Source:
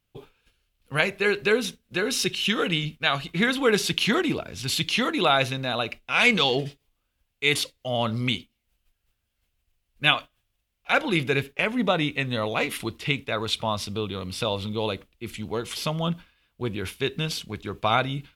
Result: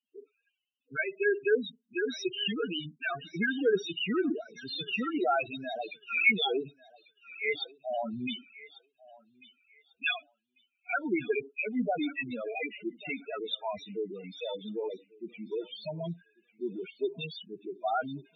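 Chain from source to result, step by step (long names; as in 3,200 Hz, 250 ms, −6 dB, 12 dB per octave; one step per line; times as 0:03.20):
loudspeaker in its box 280–6,600 Hz, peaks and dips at 540 Hz −7 dB, 1,100 Hz −8 dB, 4,900 Hz −8 dB
spectral peaks only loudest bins 4
feedback echo with a high-pass in the loop 1,144 ms, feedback 27%, high-pass 750 Hz, level −18 dB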